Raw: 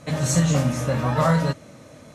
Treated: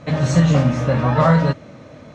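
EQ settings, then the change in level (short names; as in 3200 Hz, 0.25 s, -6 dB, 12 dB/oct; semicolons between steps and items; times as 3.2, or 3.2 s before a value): air absorption 160 m; +5.5 dB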